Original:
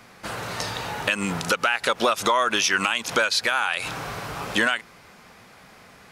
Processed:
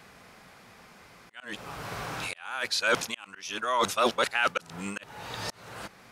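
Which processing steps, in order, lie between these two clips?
reverse the whole clip; slow attack 536 ms; trim -3.5 dB

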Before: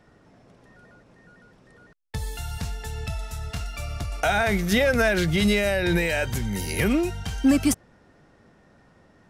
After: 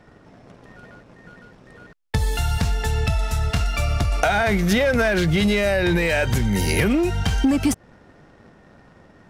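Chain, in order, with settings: treble shelf 5.7 kHz -6.5 dB; waveshaping leveller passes 1; compression 10:1, threshold -24 dBFS, peak gain reduction 10.5 dB; trim +8 dB

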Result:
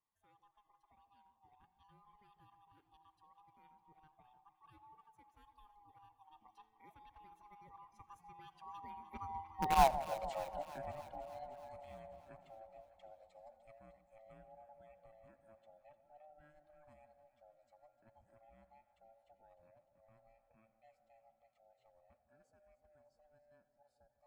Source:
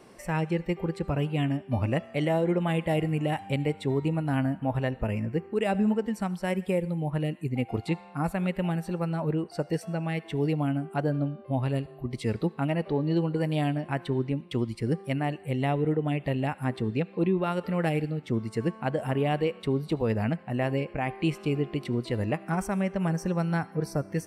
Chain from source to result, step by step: split-band scrambler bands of 500 Hz; Doppler pass-by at 9.87 s, 57 m/s, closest 4.1 m; in parallel at -6 dB: bit crusher 5-bit; on the sum: echo whose repeats swap between lows and highs 151 ms, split 900 Hz, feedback 81%, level -12.5 dB; modulated delay 87 ms, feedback 47%, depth 172 cents, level -21.5 dB; trim +1 dB

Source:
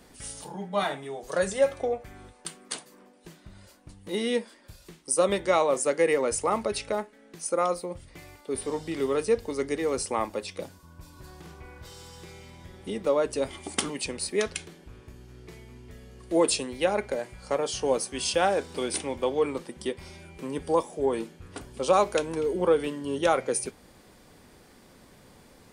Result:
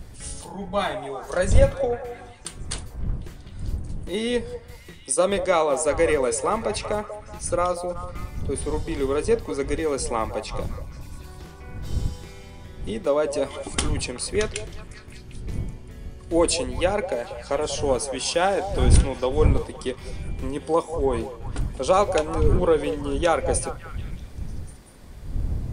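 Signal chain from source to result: wind noise 81 Hz -31 dBFS; repeats whose band climbs or falls 188 ms, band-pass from 640 Hz, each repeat 0.7 oct, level -8.5 dB; trim +2.5 dB

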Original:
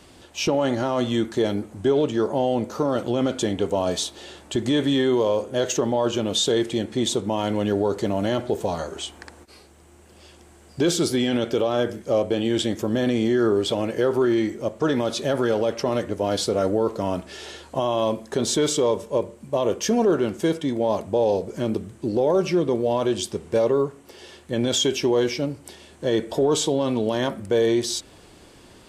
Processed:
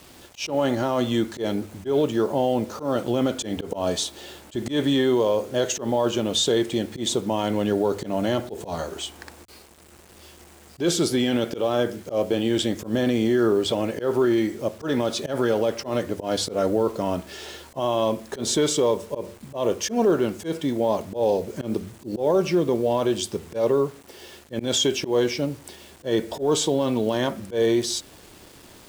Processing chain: word length cut 8-bit, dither none; hum notches 50/100 Hz; slow attack 109 ms

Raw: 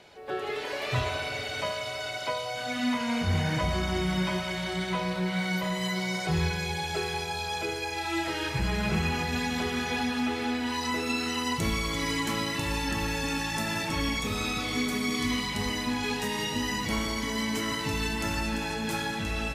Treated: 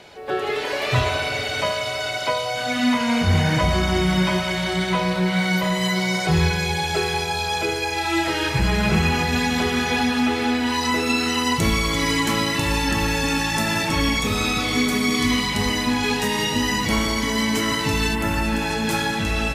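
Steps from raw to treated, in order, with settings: 18.14–18.70 s: peaking EQ 5.5 kHz -11.5 dB -> -1.5 dB 1.4 oct; trim +8.5 dB

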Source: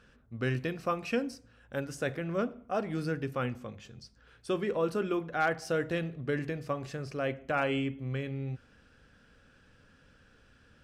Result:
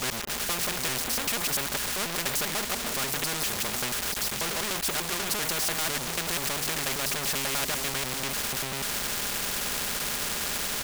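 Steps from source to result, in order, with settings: slices played last to first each 98 ms, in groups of 5; word length cut 10-bit, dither none; comb 4.9 ms, depth 62%; power-law waveshaper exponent 0.5; spectrum-flattening compressor 4:1

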